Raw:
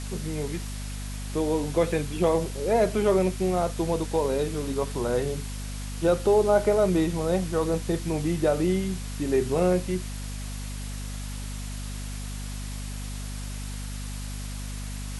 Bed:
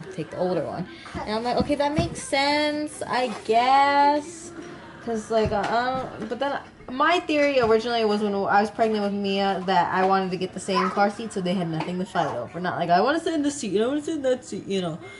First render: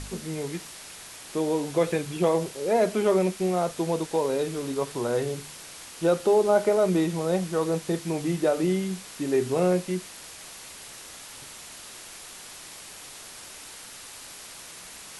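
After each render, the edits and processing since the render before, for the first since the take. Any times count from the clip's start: de-hum 50 Hz, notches 5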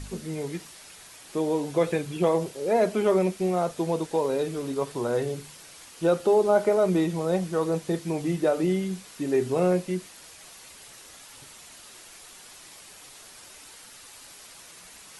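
denoiser 6 dB, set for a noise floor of -44 dBFS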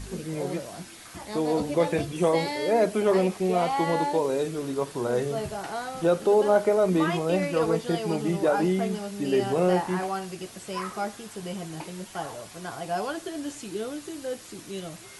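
add bed -10 dB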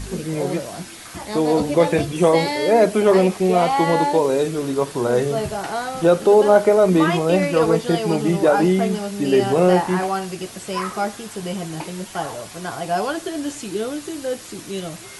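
gain +7.5 dB

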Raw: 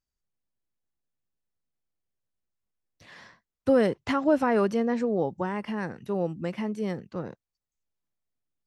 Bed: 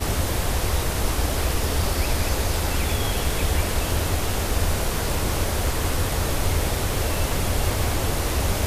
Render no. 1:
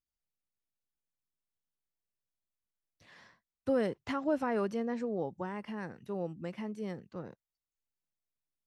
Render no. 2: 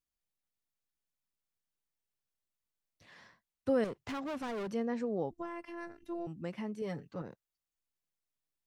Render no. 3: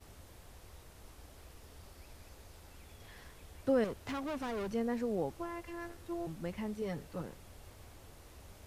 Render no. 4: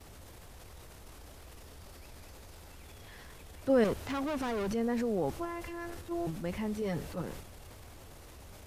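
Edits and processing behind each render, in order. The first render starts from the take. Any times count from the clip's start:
gain -8.5 dB
3.84–4.72 hard clip -36 dBFS; 5.31–6.27 robotiser 343 Hz; 6.81–7.22 comb 7 ms, depth 71%
add bed -31.5 dB
transient shaper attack -3 dB, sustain +6 dB; in parallel at -1 dB: level quantiser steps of 10 dB

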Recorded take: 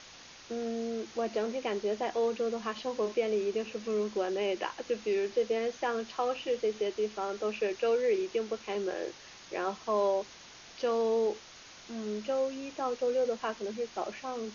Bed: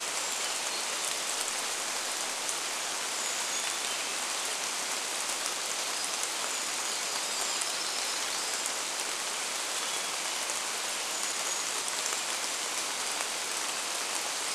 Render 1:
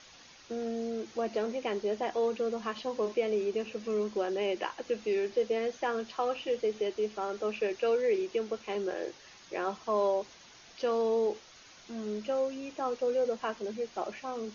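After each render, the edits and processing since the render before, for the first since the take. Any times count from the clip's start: denoiser 6 dB, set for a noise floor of -52 dBFS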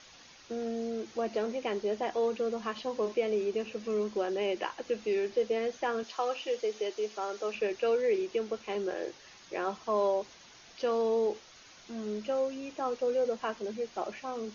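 6.03–7.55 tone controls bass -13 dB, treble +5 dB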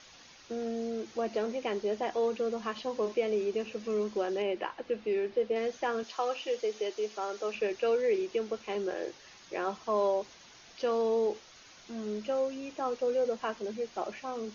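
4.42–5.56 air absorption 190 m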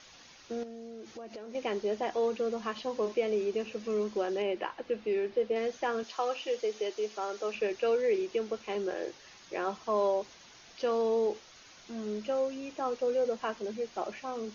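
0.63–1.55 compressor, threshold -41 dBFS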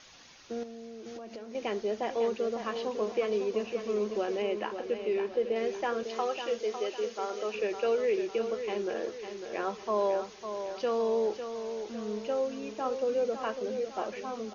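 feedback echo 0.552 s, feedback 46%, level -8.5 dB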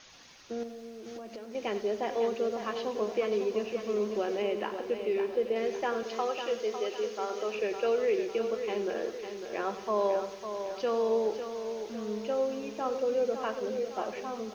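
lo-fi delay 94 ms, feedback 55%, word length 9-bit, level -13 dB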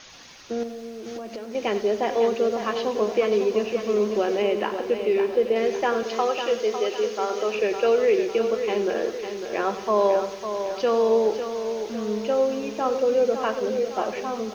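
gain +8 dB

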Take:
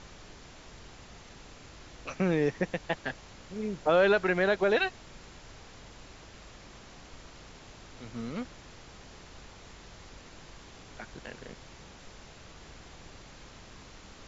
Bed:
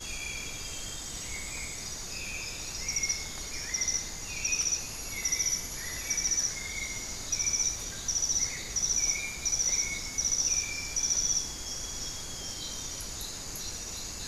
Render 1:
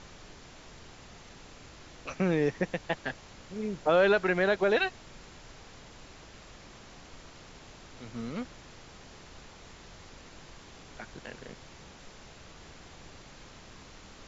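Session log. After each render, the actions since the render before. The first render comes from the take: de-hum 50 Hz, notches 2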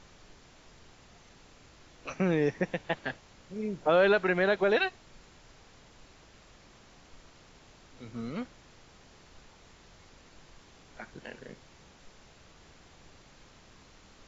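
noise print and reduce 6 dB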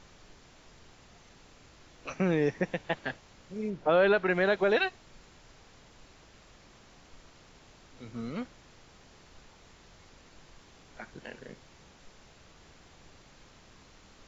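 3.7–4.3 air absorption 100 m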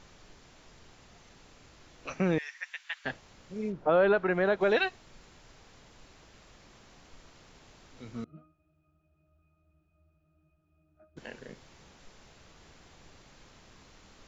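2.38–3.05 HPF 1400 Hz 24 dB/oct; 3.72–4.61 EQ curve 1300 Hz 0 dB, 2000 Hz -5 dB, 4600 Hz -8 dB; 8.24–11.17 octave resonator D#, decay 0.33 s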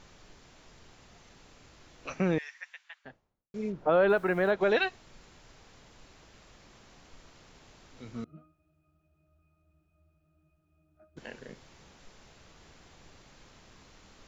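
2.19–3.54 studio fade out; 4.09–4.51 requantised 10-bit, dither none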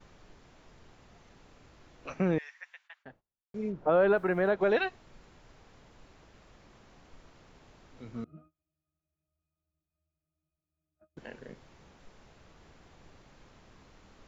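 gate -58 dBFS, range -18 dB; high shelf 2700 Hz -9 dB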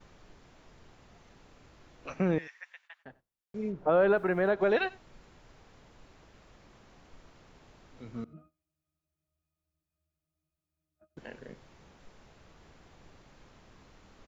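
echo 92 ms -23 dB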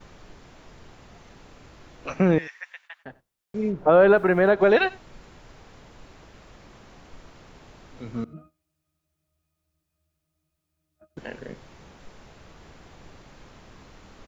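gain +8.5 dB

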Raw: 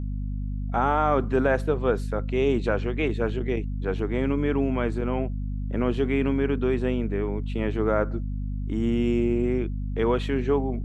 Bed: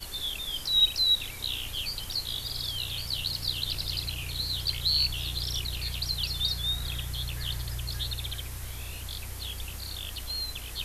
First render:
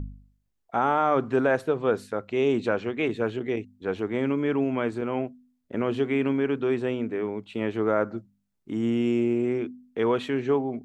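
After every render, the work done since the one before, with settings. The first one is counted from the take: de-hum 50 Hz, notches 5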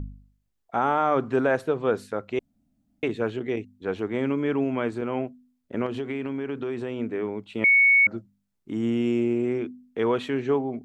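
2.39–3.03 room tone; 5.86–6.99 compressor, threshold -26 dBFS; 7.64–8.07 bleep 2220 Hz -14 dBFS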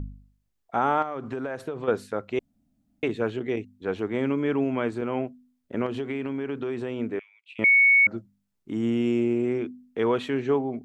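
1.02–1.88 compressor 12:1, threshold -27 dBFS; 7.19–7.59 ladder high-pass 2300 Hz, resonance 75%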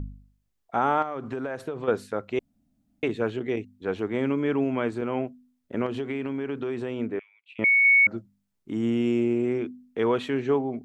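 7.06–7.85 high shelf 4100 Hz -9 dB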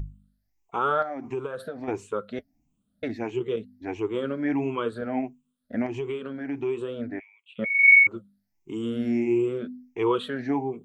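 moving spectral ripple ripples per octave 0.7, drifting +1.5 Hz, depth 17 dB; flange 1 Hz, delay 1.6 ms, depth 5.1 ms, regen -52%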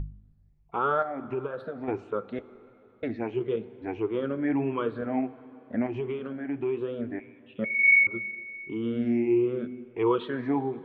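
air absorption 300 m; plate-style reverb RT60 3.4 s, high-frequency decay 0.9×, DRR 16 dB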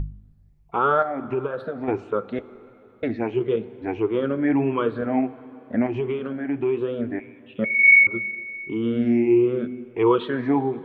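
gain +6 dB

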